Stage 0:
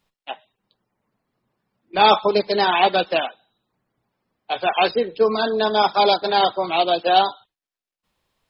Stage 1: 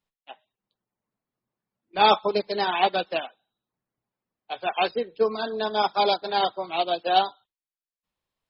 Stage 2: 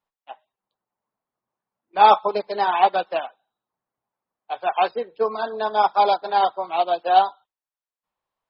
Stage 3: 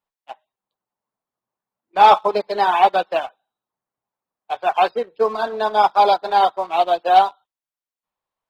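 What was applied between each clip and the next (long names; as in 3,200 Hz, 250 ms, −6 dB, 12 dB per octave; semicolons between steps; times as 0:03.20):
expander for the loud parts 1.5 to 1, over −31 dBFS; level −3.5 dB
parametric band 910 Hz +13.5 dB 2.1 octaves; level −7 dB
leveller curve on the samples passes 1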